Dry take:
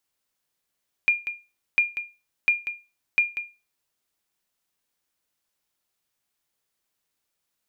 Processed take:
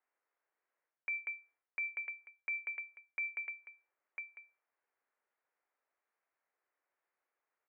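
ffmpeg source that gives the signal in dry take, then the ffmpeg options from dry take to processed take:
-f lavfi -i "aevalsrc='0.266*(sin(2*PI*2410*mod(t,0.7))*exp(-6.91*mod(t,0.7)/0.28)+0.282*sin(2*PI*2410*max(mod(t,0.7)-0.19,0))*exp(-6.91*max(mod(t,0.7)-0.19,0)/0.28))':d=2.8:s=44100"
-af "aecho=1:1:1000:0.15,highpass=f=470:t=q:w=0.5412,highpass=f=470:t=q:w=1.307,lowpass=f=2200:t=q:w=0.5176,lowpass=f=2200:t=q:w=0.7071,lowpass=f=2200:t=q:w=1.932,afreqshift=-72,areverse,acompressor=threshold=0.0141:ratio=6,areverse"

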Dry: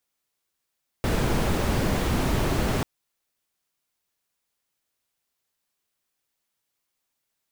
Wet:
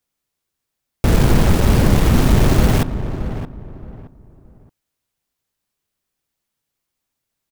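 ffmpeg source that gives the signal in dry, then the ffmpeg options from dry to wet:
-f lavfi -i "anoisesrc=c=brown:a=0.331:d=1.79:r=44100:seed=1"
-filter_complex "[0:a]asplit=2[s0][s1];[s1]acrusher=bits=3:mix=0:aa=0.000001,volume=0.668[s2];[s0][s2]amix=inputs=2:normalize=0,lowshelf=f=280:g=9,asplit=2[s3][s4];[s4]adelay=621,lowpass=f=1400:p=1,volume=0.316,asplit=2[s5][s6];[s6]adelay=621,lowpass=f=1400:p=1,volume=0.28,asplit=2[s7][s8];[s8]adelay=621,lowpass=f=1400:p=1,volume=0.28[s9];[s3][s5][s7][s9]amix=inputs=4:normalize=0"

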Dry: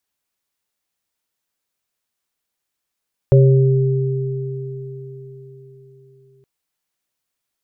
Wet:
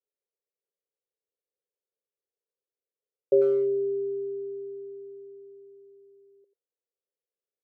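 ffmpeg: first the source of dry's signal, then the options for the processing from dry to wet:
-f lavfi -i "aevalsrc='0.447*pow(10,-3*t/4.07)*sin(2*PI*133*t)+0.211*pow(10,-3*t/4.79)*sin(2*PI*397*t)+0.178*pow(10,-3*t/0.76)*sin(2*PI*549*t)':d=3.12:s=44100"
-filter_complex "[0:a]asuperpass=centerf=460:order=4:qfactor=3,asplit=2[s0][s1];[s1]adelay=90,highpass=300,lowpass=3400,asoftclip=type=hard:threshold=0.106,volume=0.224[s2];[s0][s2]amix=inputs=2:normalize=0"

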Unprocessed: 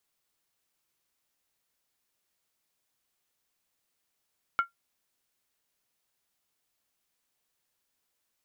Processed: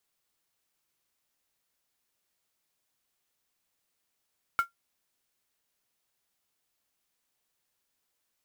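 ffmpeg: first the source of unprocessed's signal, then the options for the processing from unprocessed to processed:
-f lavfi -i "aevalsrc='0.133*pow(10,-3*t/0.13)*sin(2*PI*1380*t)+0.0335*pow(10,-3*t/0.103)*sin(2*PI*2199.7*t)+0.00841*pow(10,-3*t/0.089)*sin(2*PI*2947.7*t)+0.00211*pow(10,-3*t/0.086)*sin(2*PI*3168.5*t)+0.000531*pow(10,-3*t/0.08)*sin(2*PI*3661.1*t)':d=0.63:s=44100"
-af "acrusher=bits=4:mode=log:mix=0:aa=0.000001"

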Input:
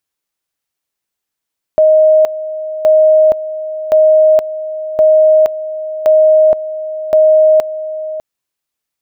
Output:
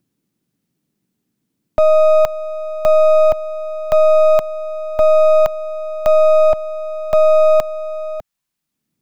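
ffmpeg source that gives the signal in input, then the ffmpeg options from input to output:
-f lavfi -i "aevalsrc='pow(10,(-4.5-14*gte(mod(t,1.07),0.47))/20)*sin(2*PI*624*t)':d=6.42:s=44100"
-filter_complex "[0:a]acrossover=split=160|230|520[s0][s1][s2][s3];[s1]acompressor=mode=upward:threshold=0.00447:ratio=2.5[s4];[s2]aeval=exprs='abs(val(0))':c=same[s5];[s0][s4][s5][s3]amix=inputs=4:normalize=0"

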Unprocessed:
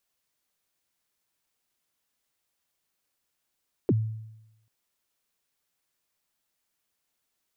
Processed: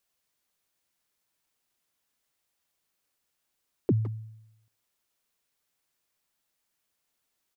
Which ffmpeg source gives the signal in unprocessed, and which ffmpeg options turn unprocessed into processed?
-f lavfi -i "aevalsrc='0.141*pow(10,-3*t/0.91)*sin(2*PI*(470*0.039/log(110/470)*(exp(log(110/470)*min(t,0.039)/0.039)-1)+110*max(t-0.039,0)))':d=0.79:s=44100"
-filter_complex "[0:a]asplit=2[s0][s1];[s1]adelay=160,highpass=300,lowpass=3400,asoftclip=type=hard:threshold=0.0473,volume=0.282[s2];[s0][s2]amix=inputs=2:normalize=0"

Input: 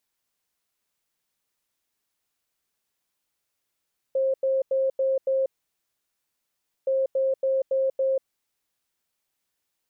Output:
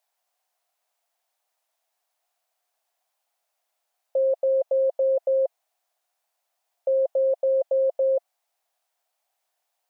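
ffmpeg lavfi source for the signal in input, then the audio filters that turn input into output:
-f lavfi -i "aevalsrc='0.1*sin(2*PI*533*t)*clip(min(mod(mod(t,2.72),0.28),0.19-mod(mod(t,2.72),0.28))/0.005,0,1)*lt(mod(t,2.72),1.4)':d=5.44:s=44100"
-af "highpass=f=700:t=q:w=5.8"

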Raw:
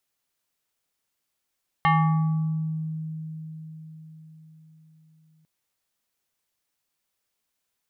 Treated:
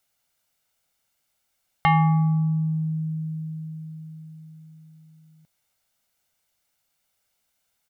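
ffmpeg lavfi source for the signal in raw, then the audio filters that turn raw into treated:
-f lavfi -i "aevalsrc='0.168*pow(10,-3*t/5)*sin(2*PI*158*t+1.8*pow(10,-3*t/1.25)*sin(2*PI*6.23*158*t))':d=3.6:s=44100"
-filter_complex "[0:a]aecho=1:1:1.4:0.42,asplit=2[s0][s1];[s1]acompressor=threshold=0.0316:ratio=6,volume=0.708[s2];[s0][s2]amix=inputs=2:normalize=0"

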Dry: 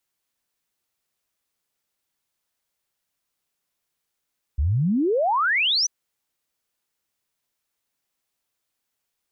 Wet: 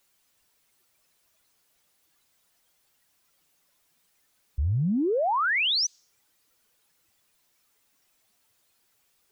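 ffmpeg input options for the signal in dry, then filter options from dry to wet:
-f lavfi -i "aevalsrc='0.126*clip(min(t,1.29-t)/0.01,0,1)*sin(2*PI*64*1.29/log(6200/64)*(exp(log(6200/64)*t/1.29)-1))':d=1.29:s=44100"
-af "aeval=exprs='val(0)+0.5*0.00708*sgn(val(0))':c=same,alimiter=limit=0.0841:level=0:latency=1:release=283,afftdn=nr=21:nf=-46"

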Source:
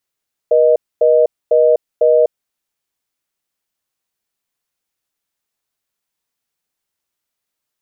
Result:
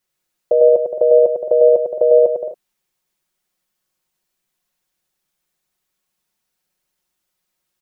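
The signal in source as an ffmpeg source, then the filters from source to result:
-f lavfi -i "aevalsrc='0.299*(sin(2*PI*480*t)+sin(2*PI*620*t))*clip(min(mod(t,0.5),0.25-mod(t,0.5))/0.005,0,1)':d=1.86:s=44100"
-filter_complex "[0:a]lowshelf=f=320:g=4,aecho=1:1:5.5:0.65,asplit=2[s0][s1];[s1]aecho=0:1:100|170|219|253.3|277.3:0.631|0.398|0.251|0.158|0.1[s2];[s0][s2]amix=inputs=2:normalize=0"

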